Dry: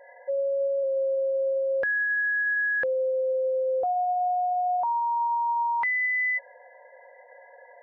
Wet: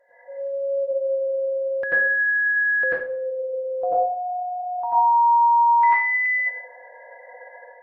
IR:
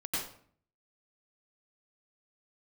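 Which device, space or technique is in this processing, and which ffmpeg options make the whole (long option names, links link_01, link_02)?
speakerphone in a meeting room: -filter_complex "[1:a]atrim=start_sample=2205[link_01];[0:a][link_01]afir=irnorm=-1:irlink=0,dynaudnorm=framelen=450:gausssize=3:maxgain=10dB,volume=-7dB" -ar 48000 -c:a libopus -b:a 32k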